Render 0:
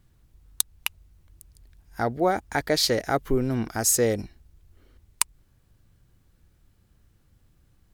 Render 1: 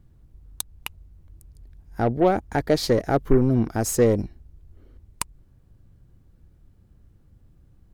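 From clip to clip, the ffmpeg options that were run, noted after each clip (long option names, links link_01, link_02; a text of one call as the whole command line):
ffmpeg -i in.wav -af "tiltshelf=frequency=970:gain=7,aeval=exprs='0.501*(cos(1*acos(clip(val(0)/0.501,-1,1)))-cos(1*PI/2))+0.0158*(cos(6*acos(clip(val(0)/0.501,-1,1)))-cos(6*PI/2))+0.0282*(cos(8*acos(clip(val(0)/0.501,-1,1)))-cos(8*PI/2))':channel_layout=same" out.wav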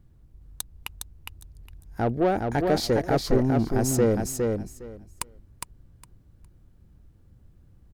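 ffmpeg -i in.wav -filter_complex "[0:a]asoftclip=type=tanh:threshold=-12.5dB,asplit=2[link_01][link_02];[link_02]aecho=0:1:410|820|1230:0.631|0.107|0.0182[link_03];[link_01][link_03]amix=inputs=2:normalize=0,volume=-1.5dB" out.wav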